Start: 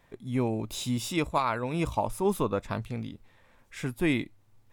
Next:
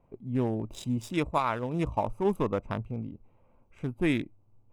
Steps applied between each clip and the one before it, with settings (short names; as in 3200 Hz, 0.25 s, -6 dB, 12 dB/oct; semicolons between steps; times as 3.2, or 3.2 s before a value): Wiener smoothing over 25 samples; notch 4300 Hz, Q 5.2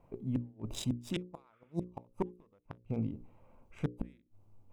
flipped gate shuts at -21 dBFS, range -40 dB; notches 60/120/180/240/300/360/420/480/540 Hz; spectral repair 1.55–1.79, 1100–3600 Hz both; gain +2.5 dB